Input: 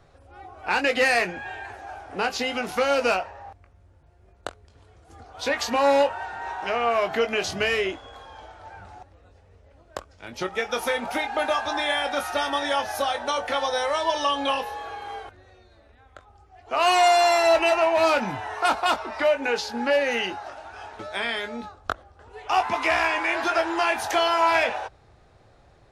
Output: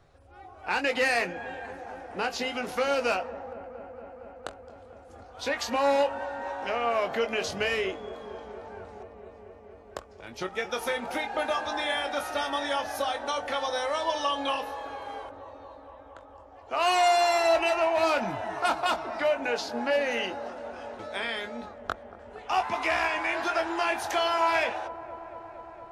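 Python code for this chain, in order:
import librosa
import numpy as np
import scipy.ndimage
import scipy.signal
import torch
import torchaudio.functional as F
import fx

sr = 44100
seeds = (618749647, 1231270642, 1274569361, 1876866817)

y = fx.echo_wet_lowpass(x, sr, ms=231, feedback_pct=84, hz=880.0, wet_db=-13.5)
y = F.gain(torch.from_numpy(y), -4.5).numpy()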